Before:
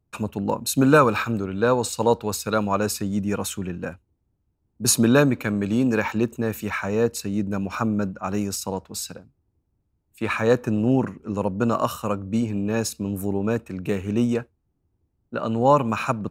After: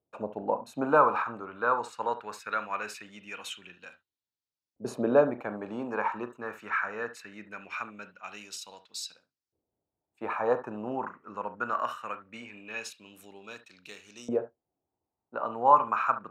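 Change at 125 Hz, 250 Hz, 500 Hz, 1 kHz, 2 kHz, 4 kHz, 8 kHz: -22.5 dB, -16.0 dB, -7.5 dB, -1.5 dB, -5.5 dB, -11.0 dB, -18.5 dB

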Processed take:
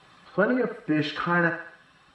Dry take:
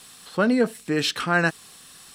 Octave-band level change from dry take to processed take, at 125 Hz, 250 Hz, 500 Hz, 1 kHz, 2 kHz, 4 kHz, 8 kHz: -1.0 dB, -2.5 dB, -2.0 dB, -1.0 dB, -1.5 dB, -9.0 dB, under -20 dB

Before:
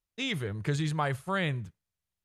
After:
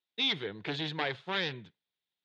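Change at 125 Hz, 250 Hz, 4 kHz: -12.5 dB, -6.0 dB, +6.5 dB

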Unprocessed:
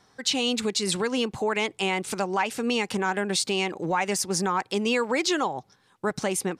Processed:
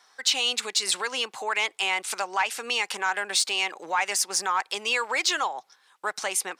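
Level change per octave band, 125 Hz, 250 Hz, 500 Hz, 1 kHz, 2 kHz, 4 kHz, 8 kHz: under -20 dB, -17.5 dB, -8.5 dB, +0.5 dB, +3.0 dB, +3.0 dB, +3.0 dB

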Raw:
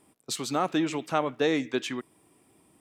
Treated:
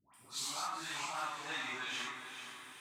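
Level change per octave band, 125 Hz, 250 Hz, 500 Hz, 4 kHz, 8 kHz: -20.0 dB, -24.5 dB, -23.5 dB, -4.5 dB, -4.0 dB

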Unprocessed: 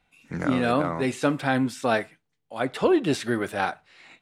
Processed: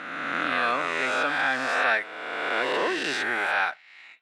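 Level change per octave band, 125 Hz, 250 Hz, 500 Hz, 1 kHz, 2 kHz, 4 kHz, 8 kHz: -18.5 dB, -11.5 dB, -5.0 dB, +2.0 dB, +8.0 dB, +4.5 dB, -2.0 dB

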